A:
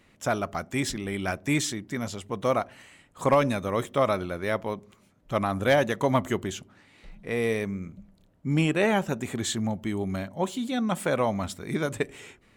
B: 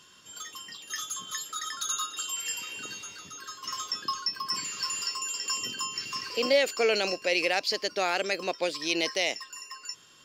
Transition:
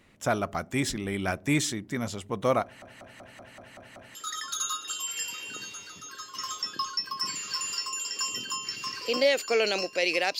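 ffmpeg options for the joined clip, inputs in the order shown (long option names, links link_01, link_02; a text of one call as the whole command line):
ffmpeg -i cue0.wav -i cue1.wav -filter_complex "[0:a]apad=whole_dur=10.39,atrim=end=10.39,asplit=8[link_01][link_02][link_03][link_04][link_05][link_06][link_07][link_08];[link_01]atrim=end=2.822[link_09];[link_02]atrim=start=2.628:end=2.822[link_10];[link_03]atrim=start=2.628:end=2.822[link_11];[link_04]atrim=start=2.628:end=2.822[link_12];[link_05]atrim=start=2.628:end=2.822[link_13];[link_06]atrim=start=2.628:end=2.822[link_14];[link_07]atrim=start=2.628:end=2.822[link_15];[link_08]atrim=start=2.628:end=2.822[link_16];[1:a]atrim=start=1.438:end=7.68[link_17];[link_09][link_10]acrossfade=duration=0.004:curve1=hsin:curve2=hsin[link_18];[link_18][link_11]acrossfade=duration=0.004:curve1=hsin:curve2=hsin[link_19];[link_19][link_12]acrossfade=duration=0.004:curve1=hsin:curve2=hsin[link_20];[link_20][link_13]acrossfade=duration=0.004:curve1=hsin:curve2=hsin[link_21];[link_21][link_14]acrossfade=duration=0.004:curve1=hsin:curve2=hsin[link_22];[link_22][link_15]acrossfade=duration=0.004:curve1=hsin:curve2=hsin[link_23];[link_23][link_16]acrossfade=duration=0.004:curve1=hsin:curve2=hsin[link_24];[link_24][link_17]acrossfade=duration=0.004:curve1=hsin:curve2=hsin" out.wav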